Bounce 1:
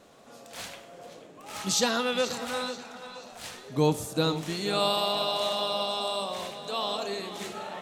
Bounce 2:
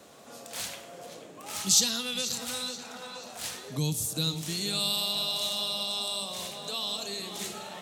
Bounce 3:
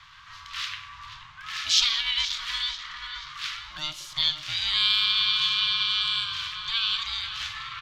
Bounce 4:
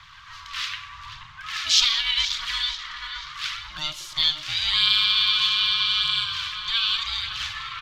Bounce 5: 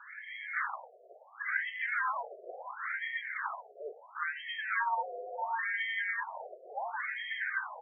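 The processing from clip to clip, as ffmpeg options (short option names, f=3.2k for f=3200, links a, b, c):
-filter_complex "[0:a]highpass=61,highshelf=f=5.5k:g=8,acrossover=split=190|3000[a][b][c];[b]acompressor=threshold=-42dB:ratio=6[d];[a][d][c]amix=inputs=3:normalize=0,volume=2dB"
-af "bass=f=250:g=5,treble=f=4k:g=12,aeval=exprs='val(0)*sin(2*PI*460*n/s)':c=same,firequalizer=gain_entry='entry(130,0);entry(220,-25);entry(660,-23);entry(1100,9);entry(1700,11);entry(3400,7);entry(8500,-28)':delay=0.05:min_phase=1"
-af "aphaser=in_gain=1:out_gain=1:delay=4.1:decay=0.32:speed=0.82:type=triangular,volume=2.5dB"
-af "equalizer=f=160:t=o:w=0.67:g=10,equalizer=f=400:t=o:w=0.67:g=5,equalizer=f=1.6k:t=o:w=0.67:g=8,lowpass=f=2.8k:t=q:w=0.5098,lowpass=f=2.8k:t=q:w=0.6013,lowpass=f=2.8k:t=q:w=0.9,lowpass=f=2.8k:t=q:w=2.563,afreqshift=-3300,afftfilt=real='re*between(b*sr/1024,500*pow(2500/500,0.5+0.5*sin(2*PI*0.72*pts/sr))/1.41,500*pow(2500/500,0.5+0.5*sin(2*PI*0.72*pts/sr))*1.41)':imag='im*between(b*sr/1024,500*pow(2500/500,0.5+0.5*sin(2*PI*0.72*pts/sr))/1.41,500*pow(2500/500,0.5+0.5*sin(2*PI*0.72*pts/sr))*1.41)':win_size=1024:overlap=0.75,volume=-2.5dB"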